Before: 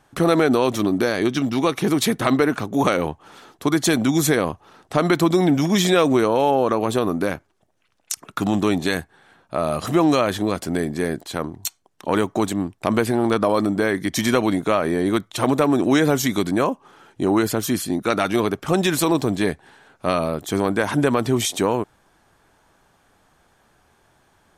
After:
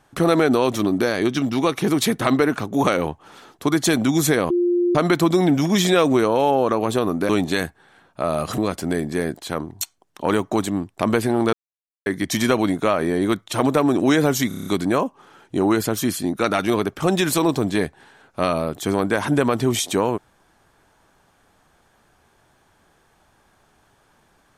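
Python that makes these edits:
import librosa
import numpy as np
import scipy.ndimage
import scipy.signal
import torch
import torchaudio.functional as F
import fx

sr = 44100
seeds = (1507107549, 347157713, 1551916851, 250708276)

y = fx.edit(x, sr, fx.bleep(start_s=4.5, length_s=0.45, hz=351.0, db=-15.5),
    fx.cut(start_s=7.29, length_s=1.34),
    fx.cut(start_s=9.92, length_s=0.5),
    fx.silence(start_s=13.37, length_s=0.53),
    fx.stutter(start_s=16.32, slice_s=0.03, count=7), tone=tone)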